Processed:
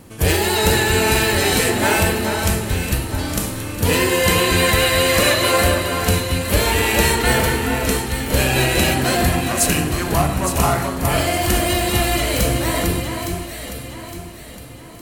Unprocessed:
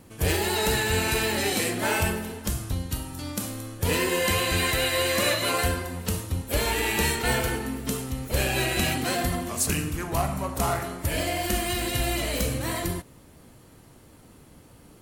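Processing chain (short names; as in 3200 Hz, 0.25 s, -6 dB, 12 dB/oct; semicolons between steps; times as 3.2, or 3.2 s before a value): echo with dull and thin repeats by turns 0.431 s, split 1700 Hz, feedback 63%, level -4 dB; gain +7.5 dB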